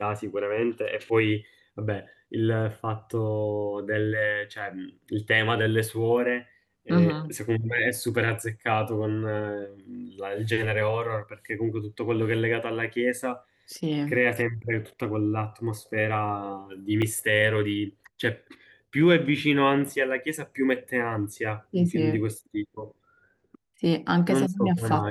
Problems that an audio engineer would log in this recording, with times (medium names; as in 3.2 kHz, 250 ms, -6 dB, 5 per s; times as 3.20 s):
17.02 s: dropout 3.2 ms